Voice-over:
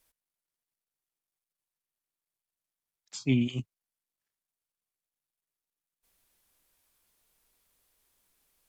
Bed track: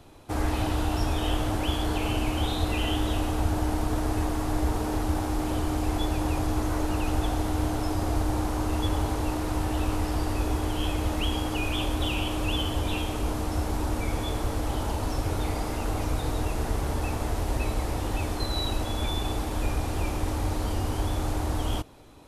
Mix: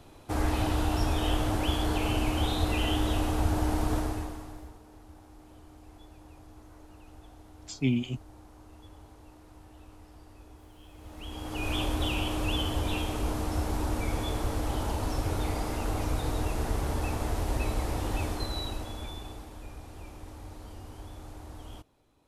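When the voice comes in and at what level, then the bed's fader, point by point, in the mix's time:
4.55 s, -1.0 dB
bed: 3.96 s -1 dB
4.81 s -24.5 dB
10.88 s -24.5 dB
11.71 s -2 dB
18.24 s -2 dB
19.62 s -16.5 dB

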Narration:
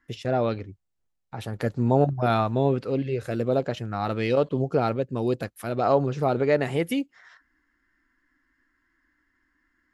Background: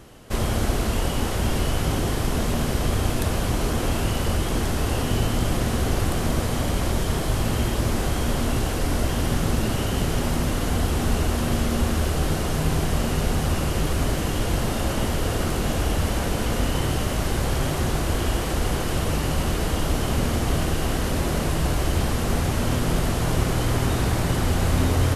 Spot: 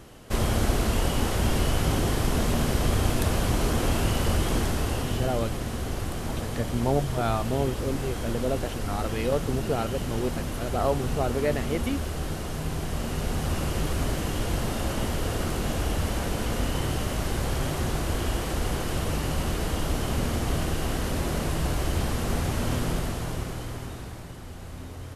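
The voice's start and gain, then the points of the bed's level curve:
4.95 s, -4.5 dB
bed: 4.53 s -1 dB
5.48 s -8 dB
12.76 s -8 dB
13.63 s -4 dB
22.81 s -4 dB
24.36 s -19 dB

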